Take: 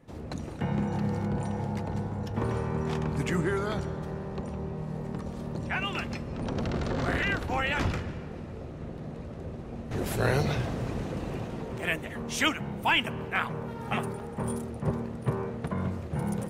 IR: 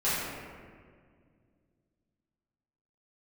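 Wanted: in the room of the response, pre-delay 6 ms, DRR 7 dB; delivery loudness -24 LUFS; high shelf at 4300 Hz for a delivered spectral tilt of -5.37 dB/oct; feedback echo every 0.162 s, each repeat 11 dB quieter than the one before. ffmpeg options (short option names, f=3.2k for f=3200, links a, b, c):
-filter_complex "[0:a]highshelf=f=4.3k:g=-8.5,aecho=1:1:162|324|486:0.282|0.0789|0.0221,asplit=2[a][b];[1:a]atrim=start_sample=2205,adelay=6[c];[b][c]afir=irnorm=-1:irlink=0,volume=-18.5dB[d];[a][d]amix=inputs=2:normalize=0,volume=6.5dB"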